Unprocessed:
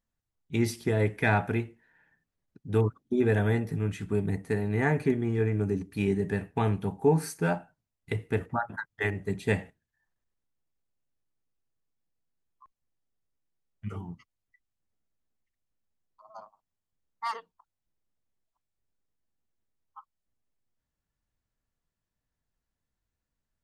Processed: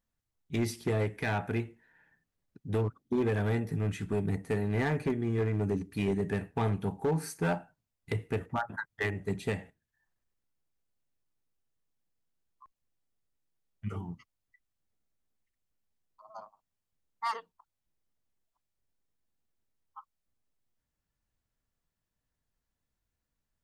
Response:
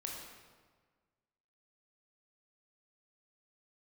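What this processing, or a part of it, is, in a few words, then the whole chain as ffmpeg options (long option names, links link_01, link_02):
limiter into clipper: -af "alimiter=limit=-18dB:level=0:latency=1:release=441,asoftclip=type=hard:threshold=-23.5dB"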